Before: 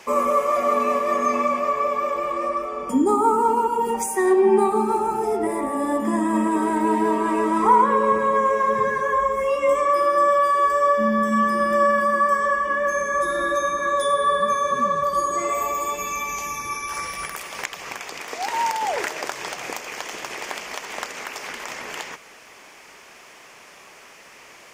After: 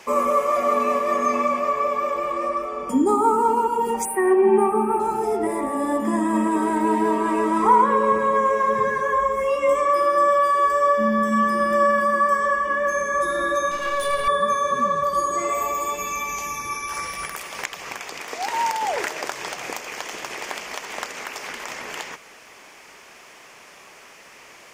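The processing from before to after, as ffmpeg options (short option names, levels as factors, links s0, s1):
-filter_complex "[0:a]asettb=1/sr,asplit=3[s0][s1][s2];[s0]atrim=end=4.054[s3];[s1]atrim=start=4.05:end=5,asetpts=PTS-STARTPTS,afade=t=in:d=0.004:c=qsin,afade=t=out:st=0.946:d=0.004:c=qsin,asuperstop=centerf=5200:order=20:qfactor=1[s4];[s2]atrim=start=4.996[s5];[s3][s4]acrossfade=d=0.004:c1=hsin:c2=qsin[s6];[s6][s5]acrossfade=d=0.004:c1=qsin:c2=hsin,asettb=1/sr,asplit=3[s7][s8][s9];[s7]atrim=end=13.714[s10];[s8]atrim=start=13.71:end=14.28,asetpts=PTS-STARTPTS,afade=t=in:d=0.004:c=qsin,afade=t=out:st=0.566:d=0.004:c=qsin,aeval=exprs='clip(val(0),-1,0.0398)':c=same[s11];[s9]atrim=start=14.276[s12];[s10][s11]acrossfade=d=0.004:c1=hsin:c2=qsin[s13];[s13][s12]acrossfade=d=0.004:c1=qsin:c2=hsin"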